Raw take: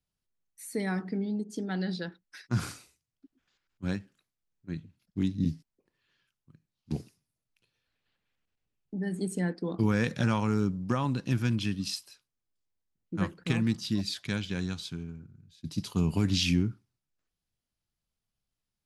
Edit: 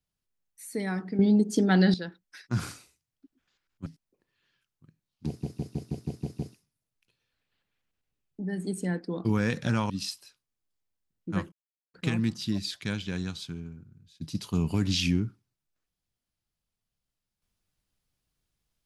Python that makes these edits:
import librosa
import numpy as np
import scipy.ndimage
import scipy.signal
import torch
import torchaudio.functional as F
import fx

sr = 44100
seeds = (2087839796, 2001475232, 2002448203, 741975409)

y = fx.edit(x, sr, fx.clip_gain(start_s=1.19, length_s=0.75, db=11.0),
    fx.cut(start_s=3.86, length_s=1.66),
    fx.stutter(start_s=6.93, slice_s=0.16, count=8),
    fx.cut(start_s=10.44, length_s=1.31),
    fx.insert_silence(at_s=13.37, length_s=0.42), tone=tone)